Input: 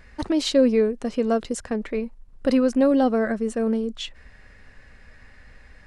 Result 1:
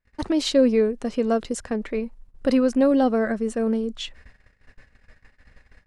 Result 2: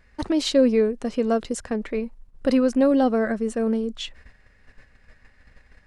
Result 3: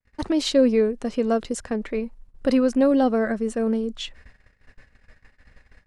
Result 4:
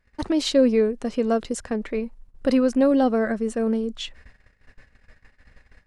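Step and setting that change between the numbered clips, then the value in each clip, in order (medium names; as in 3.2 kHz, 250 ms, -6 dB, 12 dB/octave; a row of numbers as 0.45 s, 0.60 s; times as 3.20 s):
gate, range: -33 dB, -8 dB, -55 dB, -20 dB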